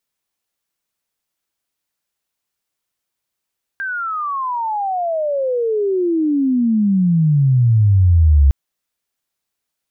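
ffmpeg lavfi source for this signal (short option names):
-f lavfi -i "aevalsrc='pow(10,(-20.5+13.5*t/4.71)/20)*sin(2*PI*1600*4.71/log(67/1600)*(exp(log(67/1600)*t/4.71)-1))':d=4.71:s=44100"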